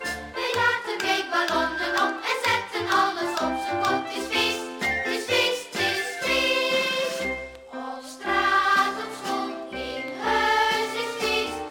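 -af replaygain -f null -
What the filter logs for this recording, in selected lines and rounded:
track_gain = +4.2 dB
track_peak = 0.235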